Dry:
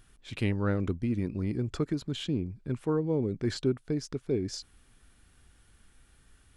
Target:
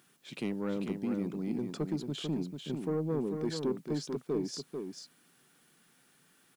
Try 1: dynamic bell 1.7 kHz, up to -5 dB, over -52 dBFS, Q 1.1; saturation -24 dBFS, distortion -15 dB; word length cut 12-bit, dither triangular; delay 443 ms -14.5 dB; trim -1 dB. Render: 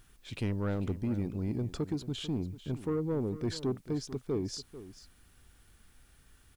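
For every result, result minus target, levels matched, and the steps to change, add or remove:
echo-to-direct -8.5 dB; 125 Hz band +4.0 dB
change: delay 443 ms -6 dB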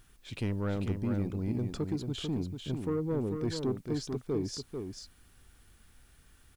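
125 Hz band +4.5 dB
add after dynamic bell: elliptic high-pass 150 Hz, stop band 60 dB

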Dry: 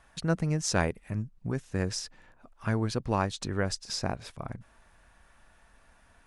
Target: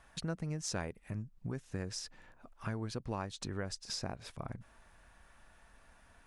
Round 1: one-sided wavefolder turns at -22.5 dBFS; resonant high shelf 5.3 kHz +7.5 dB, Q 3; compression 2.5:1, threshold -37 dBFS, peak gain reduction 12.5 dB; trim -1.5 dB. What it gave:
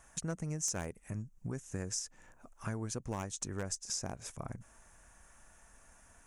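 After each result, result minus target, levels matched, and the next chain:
one-sided wavefolder: distortion +30 dB; 8 kHz band +6.5 dB
one-sided wavefolder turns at -15 dBFS; resonant high shelf 5.3 kHz +7.5 dB, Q 3; compression 2.5:1, threshold -37 dBFS, peak gain reduction 13 dB; trim -1.5 dB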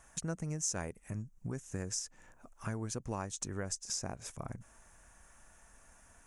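8 kHz band +6.5 dB
one-sided wavefolder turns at -15 dBFS; compression 2.5:1, threshold -37 dBFS, peak gain reduction 11.5 dB; trim -1.5 dB

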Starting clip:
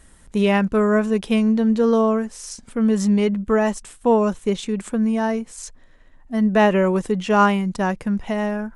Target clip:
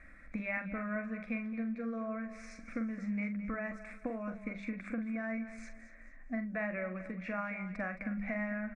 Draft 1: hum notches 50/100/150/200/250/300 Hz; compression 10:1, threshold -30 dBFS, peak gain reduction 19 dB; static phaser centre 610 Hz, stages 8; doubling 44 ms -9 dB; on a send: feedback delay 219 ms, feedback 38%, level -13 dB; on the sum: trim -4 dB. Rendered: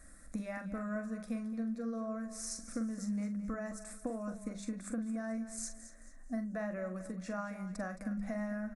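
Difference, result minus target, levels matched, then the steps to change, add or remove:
2 kHz band -7.0 dB
add after compression: resonant low-pass 2.3 kHz, resonance Q 8.7

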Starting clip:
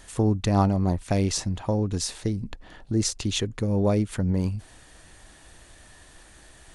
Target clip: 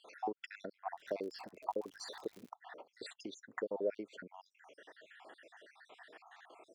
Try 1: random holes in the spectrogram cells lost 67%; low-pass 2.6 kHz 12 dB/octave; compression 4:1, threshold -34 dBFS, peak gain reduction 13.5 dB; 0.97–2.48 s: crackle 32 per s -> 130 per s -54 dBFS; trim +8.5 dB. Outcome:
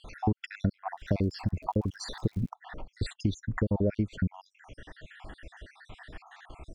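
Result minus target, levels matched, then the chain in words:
500 Hz band -7.0 dB
random holes in the spectrogram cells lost 67%; low-pass 2.6 kHz 12 dB/octave; compression 4:1, threshold -34 dBFS, peak gain reduction 13.5 dB; ladder high-pass 360 Hz, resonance 35%; 0.97–2.48 s: crackle 32 per s -> 130 per s -54 dBFS; trim +8.5 dB

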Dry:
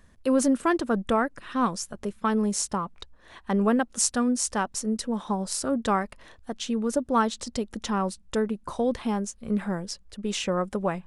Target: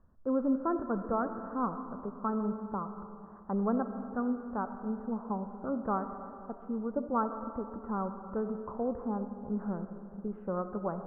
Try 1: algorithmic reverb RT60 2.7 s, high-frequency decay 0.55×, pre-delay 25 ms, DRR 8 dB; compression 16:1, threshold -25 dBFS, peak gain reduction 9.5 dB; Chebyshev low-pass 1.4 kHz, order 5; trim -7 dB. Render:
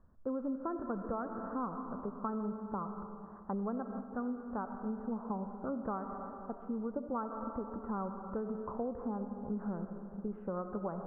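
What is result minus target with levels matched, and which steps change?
compression: peak gain reduction +9.5 dB
remove: compression 16:1, threshold -25 dBFS, peak gain reduction 9.5 dB

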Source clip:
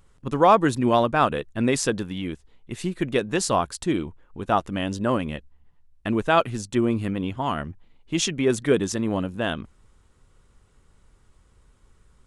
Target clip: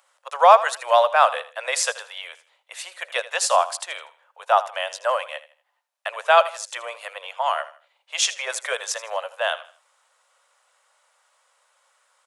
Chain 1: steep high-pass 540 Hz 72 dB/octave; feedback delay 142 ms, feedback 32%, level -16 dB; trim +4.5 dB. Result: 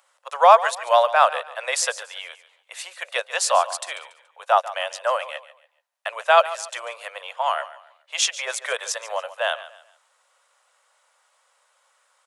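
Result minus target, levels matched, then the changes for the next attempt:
echo 62 ms late
change: feedback delay 80 ms, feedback 32%, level -16 dB

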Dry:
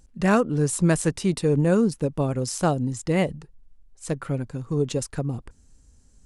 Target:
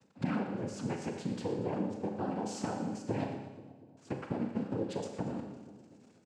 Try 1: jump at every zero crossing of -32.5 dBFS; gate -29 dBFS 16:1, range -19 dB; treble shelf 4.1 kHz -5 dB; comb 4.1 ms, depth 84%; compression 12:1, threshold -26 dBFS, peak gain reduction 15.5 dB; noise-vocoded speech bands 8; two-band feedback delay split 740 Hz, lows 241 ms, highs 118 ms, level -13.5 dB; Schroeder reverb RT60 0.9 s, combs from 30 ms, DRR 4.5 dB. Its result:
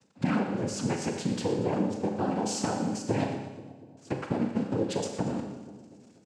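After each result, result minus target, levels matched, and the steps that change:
compression: peak gain reduction -6.5 dB; 8 kHz band +5.5 dB
change: compression 12:1, threshold -33 dBFS, peak gain reduction 22 dB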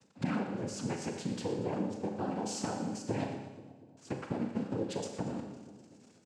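8 kHz band +5.5 dB
change: treble shelf 4.1 kHz -14 dB

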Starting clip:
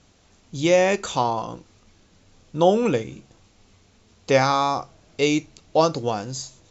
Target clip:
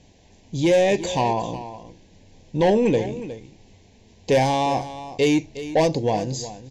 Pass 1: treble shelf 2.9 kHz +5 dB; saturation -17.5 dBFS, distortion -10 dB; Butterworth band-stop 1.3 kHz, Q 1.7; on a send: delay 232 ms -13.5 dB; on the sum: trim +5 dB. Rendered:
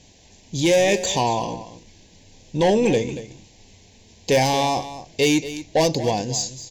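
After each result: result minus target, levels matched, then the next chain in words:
8 kHz band +8.0 dB; echo 130 ms early
treble shelf 2.9 kHz -6 dB; saturation -17.5 dBFS, distortion -10 dB; Butterworth band-stop 1.3 kHz, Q 1.7; on a send: delay 232 ms -13.5 dB; on the sum: trim +5 dB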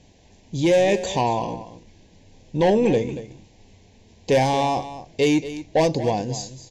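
echo 130 ms early
treble shelf 2.9 kHz -6 dB; saturation -17.5 dBFS, distortion -10 dB; Butterworth band-stop 1.3 kHz, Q 1.7; on a send: delay 362 ms -13.5 dB; on the sum: trim +5 dB

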